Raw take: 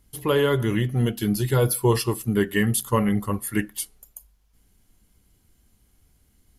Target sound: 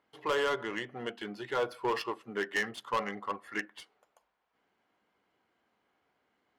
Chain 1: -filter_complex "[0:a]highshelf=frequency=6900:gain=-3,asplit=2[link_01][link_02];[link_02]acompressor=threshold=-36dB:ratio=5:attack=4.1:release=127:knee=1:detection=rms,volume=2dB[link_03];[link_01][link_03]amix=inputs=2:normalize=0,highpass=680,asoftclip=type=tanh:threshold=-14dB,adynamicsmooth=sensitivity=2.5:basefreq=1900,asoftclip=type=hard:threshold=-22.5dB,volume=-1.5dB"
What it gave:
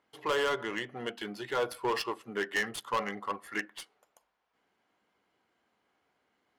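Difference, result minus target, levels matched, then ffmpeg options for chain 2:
downward compressor: peak gain reduction −5 dB; 8,000 Hz band +4.0 dB
-filter_complex "[0:a]highshelf=frequency=6900:gain=-12,asplit=2[link_01][link_02];[link_02]acompressor=threshold=-42dB:ratio=5:attack=4.1:release=127:knee=1:detection=rms,volume=2dB[link_03];[link_01][link_03]amix=inputs=2:normalize=0,highpass=680,asoftclip=type=tanh:threshold=-14dB,adynamicsmooth=sensitivity=2.5:basefreq=1900,asoftclip=type=hard:threshold=-22.5dB,volume=-1.5dB"

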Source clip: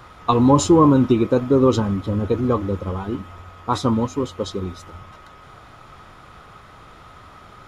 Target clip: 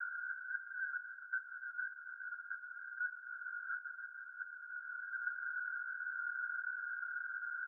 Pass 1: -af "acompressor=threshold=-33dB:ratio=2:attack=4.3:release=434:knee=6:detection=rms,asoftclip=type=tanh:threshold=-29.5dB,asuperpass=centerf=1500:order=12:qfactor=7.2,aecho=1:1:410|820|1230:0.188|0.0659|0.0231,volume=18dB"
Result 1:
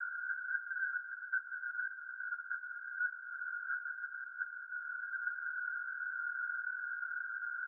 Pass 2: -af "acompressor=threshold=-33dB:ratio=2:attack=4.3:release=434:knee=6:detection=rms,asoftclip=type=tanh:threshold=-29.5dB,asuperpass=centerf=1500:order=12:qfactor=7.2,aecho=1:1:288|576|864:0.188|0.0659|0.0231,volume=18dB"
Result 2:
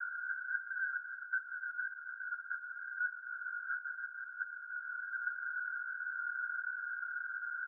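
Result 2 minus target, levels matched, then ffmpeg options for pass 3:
downward compressor: peak gain reduction −4 dB
-af "acompressor=threshold=-41dB:ratio=2:attack=4.3:release=434:knee=6:detection=rms,asoftclip=type=tanh:threshold=-29.5dB,asuperpass=centerf=1500:order=12:qfactor=7.2,aecho=1:1:288|576|864:0.188|0.0659|0.0231,volume=18dB"

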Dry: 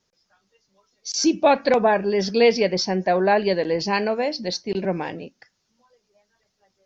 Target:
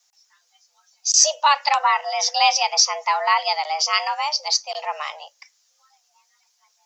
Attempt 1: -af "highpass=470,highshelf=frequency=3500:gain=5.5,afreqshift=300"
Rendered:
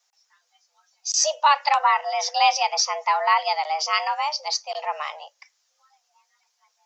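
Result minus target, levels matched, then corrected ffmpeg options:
8,000 Hz band −3.5 dB
-af "highpass=470,highshelf=frequency=3500:gain=14.5,afreqshift=300"

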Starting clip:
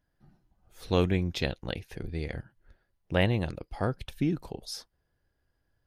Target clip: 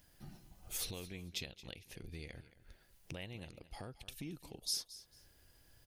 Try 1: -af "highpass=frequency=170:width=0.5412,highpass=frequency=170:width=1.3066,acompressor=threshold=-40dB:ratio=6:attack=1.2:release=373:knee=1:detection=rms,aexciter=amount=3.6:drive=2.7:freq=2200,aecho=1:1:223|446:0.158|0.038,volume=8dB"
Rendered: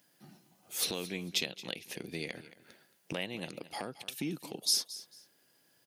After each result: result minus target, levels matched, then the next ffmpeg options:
downward compressor: peak gain reduction −9.5 dB; 125 Hz band −6.5 dB
-af "highpass=frequency=170:width=0.5412,highpass=frequency=170:width=1.3066,acompressor=threshold=-50.5dB:ratio=6:attack=1.2:release=373:knee=1:detection=rms,aexciter=amount=3.6:drive=2.7:freq=2200,aecho=1:1:223|446:0.158|0.038,volume=8dB"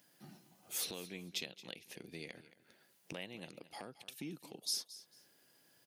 125 Hz band −7.0 dB
-af "acompressor=threshold=-50.5dB:ratio=6:attack=1.2:release=373:knee=1:detection=rms,aexciter=amount=3.6:drive=2.7:freq=2200,aecho=1:1:223|446:0.158|0.038,volume=8dB"

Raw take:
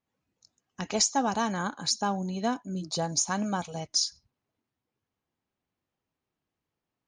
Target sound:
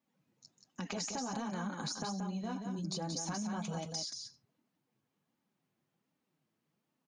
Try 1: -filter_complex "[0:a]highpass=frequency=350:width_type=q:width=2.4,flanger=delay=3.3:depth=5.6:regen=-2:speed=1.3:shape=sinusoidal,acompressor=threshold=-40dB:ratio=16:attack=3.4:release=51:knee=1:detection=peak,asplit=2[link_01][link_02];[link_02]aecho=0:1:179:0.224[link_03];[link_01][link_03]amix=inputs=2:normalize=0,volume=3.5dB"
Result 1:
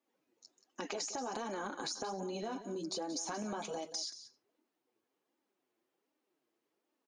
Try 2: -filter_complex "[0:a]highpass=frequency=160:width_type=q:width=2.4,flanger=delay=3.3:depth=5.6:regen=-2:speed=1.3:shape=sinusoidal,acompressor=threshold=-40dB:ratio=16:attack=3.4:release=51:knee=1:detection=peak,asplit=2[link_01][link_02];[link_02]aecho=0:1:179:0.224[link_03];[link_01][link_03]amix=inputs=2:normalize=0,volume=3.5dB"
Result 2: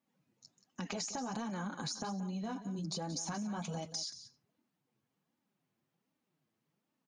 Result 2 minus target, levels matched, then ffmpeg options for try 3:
echo-to-direct −7.5 dB
-filter_complex "[0:a]highpass=frequency=160:width_type=q:width=2.4,flanger=delay=3.3:depth=5.6:regen=-2:speed=1.3:shape=sinusoidal,acompressor=threshold=-40dB:ratio=16:attack=3.4:release=51:knee=1:detection=peak,asplit=2[link_01][link_02];[link_02]aecho=0:1:179:0.531[link_03];[link_01][link_03]amix=inputs=2:normalize=0,volume=3.5dB"

